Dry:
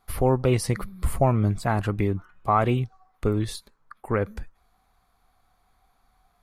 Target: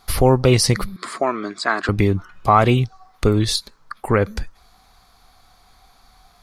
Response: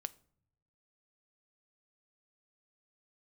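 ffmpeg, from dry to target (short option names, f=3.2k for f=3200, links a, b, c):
-filter_complex "[0:a]equalizer=f=4.9k:w=1:g=10.5,asplit=2[a][b];[b]acompressor=threshold=-34dB:ratio=6,volume=0dB[c];[a][c]amix=inputs=2:normalize=0,asettb=1/sr,asplit=3[d][e][f];[d]atrim=end=0.964[g];[e]atrim=start=0.96:end=1.89,asetpts=PTS-STARTPTS,afade=t=in:d=0.004:c=qsin,afade=t=out:st=0.926:d=0.004:c=qsin,highpass=f=310:w=0.5412,highpass=f=310:w=1.3066,equalizer=f=520:t=q:w=4:g=-9,equalizer=f=820:t=q:w=4:g=-9,equalizer=f=1.2k:t=q:w=4:g=5,equalizer=f=1.7k:t=q:w=4:g=5,equalizer=f=2.8k:t=q:w=4:g=-8,equalizer=f=5.9k:t=q:w=4:g=-8,lowpass=f=7.3k:w=0.5412,lowpass=f=7.3k:w=1.3066[h];[f]atrim=start=1.886[i];[g][h]acrossfade=d=0.004:c1=hsin:c2=qsin[j];[j][i]acrossfade=d=0.004:c1=qsin:c2=hsin,volume=5.5dB"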